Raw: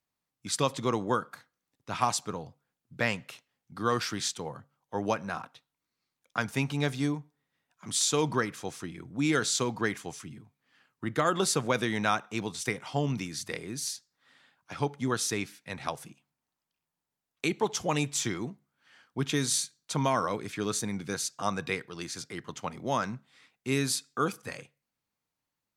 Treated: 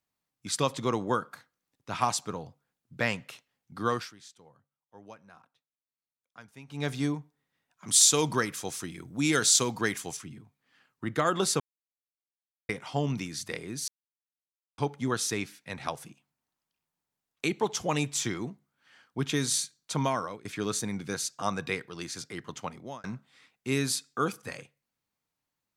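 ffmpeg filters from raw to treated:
ffmpeg -i in.wav -filter_complex "[0:a]asettb=1/sr,asplit=3[link_01][link_02][link_03];[link_01]atrim=end=7.884[link_04];[link_02]atrim=start=7.88:end=10.17,asetpts=PTS-STARTPTS,afade=type=in:duration=0.004:curve=qsin,afade=type=out:start_time=2.286:duration=0.004:curve=qsin,highshelf=frequency=4500:gain=11.5[link_05];[link_03]atrim=start=10.166[link_06];[link_04][link_05]acrossfade=duration=0.004:curve1=hsin:curve2=qsin[link_07];[link_07][link_06]acrossfade=duration=0.004:curve1=qsin:curve2=hsin,asplit=9[link_08][link_09][link_10][link_11][link_12][link_13][link_14][link_15][link_16];[link_08]atrim=end=4.13,asetpts=PTS-STARTPTS,afade=type=out:start_time=3.88:duration=0.25:silence=0.105925[link_17];[link_09]atrim=start=4.13:end=6.67,asetpts=PTS-STARTPTS,volume=-19.5dB[link_18];[link_10]atrim=start=6.67:end=11.6,asetpts=PTS-STARTPTS,afade=type=in:duration=0.25:silence=0.105925,afade=type=out:start_time=4.926:duration=0.004:curve=hsin[link_19];[link_11]atrim=start=11.6:end=12.69,asetpts=PTS-STARTPTS,volume=0[link_20];[link_12]atrim=start=12.69:end=13.88,asetpts=PTS-STARTPTS,afade=type=in:duration=0.004:curve=hsin,afade=type=out:start_time=1.186:duration=0.004:curve=hsin[link_21];[link_13]atrim=start=13.88:end=14.78,asetpts=PTS-STARTPTS,volume=0[link_22];[link_14]atrim=start=14.78:end=20.45,asetpts=PTS-STARTPTS,afade=type=in:duration=0.004:curve=hsin,afade=type=out:start_time=5.24:duration=0.43:silence=0.11885[link_23];[link_15]atrim=start=20.45:end=23.04,asetpts=PTS-STARTPTS,afade=type=in:duration=0.004:curve=hsin:silence=0.11885,afade=type=out:start_time=2.16:duration=0.43[link_24];[link_16]atrim=start=23.04,asetpts=PTS-STARTPTS,afade=type=in:duration=0.004:curve=hsin[link_25];[link_17][link_18][link_19][link_20][link_21][link_22][link_23][link_24][link_25]concat=n=9:v=0:a=1" out.wav

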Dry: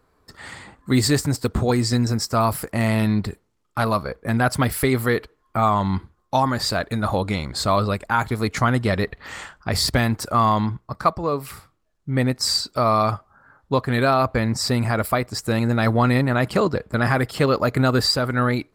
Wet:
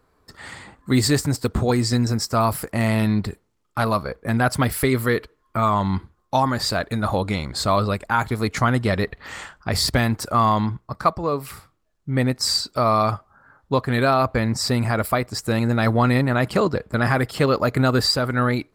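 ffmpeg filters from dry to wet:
ffmpeg -i in.wav -filter_complex "[0:a]asettb=1/sr,asplit=3[link_01][link_02][link_03];[link_01]atrim=end=4.864[link_04];[link_02]atrim=start=4.86:end=5.73,asetpts=PTS-STARTPTS,afade=type=in:duration=0.004:curve=qsin,afade=type=out:start_time=0.866:duration=0.004:curve=qsin,bandreject=frequency=770:width=5.8[link_05];[link_03]atrim=start=5.726[link_06];[link_04][link_05]acrossfade=duration=0.004:curve1=hsin:curve2=qsin[link_07];[link_07][link_06]acrossfade=duration=0.004:curve1=qsin:curve2=hsin" out.wav

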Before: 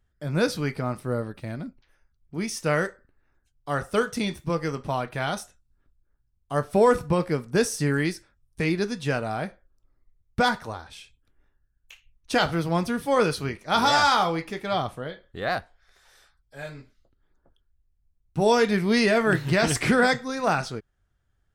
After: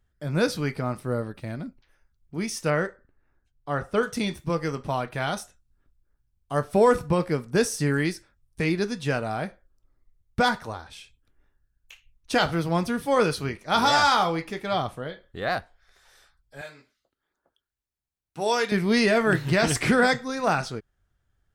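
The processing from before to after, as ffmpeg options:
ffmpeg -i in.wav -filter_complex "[0:a]asettb=1/sr,asplit=3[link_01][link_02][link_03];[link_01]atrim=end=2.704[link_04];[link_02]atrim=start=2.7:end=4.03,asetpts=PTS-STARTPTS,afade=type=in:duration=0.004:curve=qsin,afade=type=out:start_time=1.326:duration=0.004:curve=qsin,lowpass=frequency=2200:poles=1[link_05];[link_03]atrim=start=4.026[link_06];[link_04][link_05]acrossfade=duration=0.004:curve1=hsin:curve2=qsin[link_07];[link_07][link_06]acrossfade=duration=0.004:curve1=qsin:curve2=hsin,asettb=1/sr,asplit=3[link_08][link_09][link_10];[link_08]atrim=end=16.614[link_11];[link_09]atrim=start=16.61:end=18.72,asetpts=PTS-STARTPTS,afade=type=in:duration=0.004:curve=qsin,afade=type=out:start_time=2.106:duration=0.004:curve=qsin,highpass=frequency=770:poles=1[link_12];[link_10]atrim=start=18.716[link_13];[link_11][link_12]acrossfade=duration=0.004:curve1=hsin:curve2=qsin[link_14];[link_14][link_13]acrossfade=duration=0.004:curve1=qsin:curve2=hsin" out.wav

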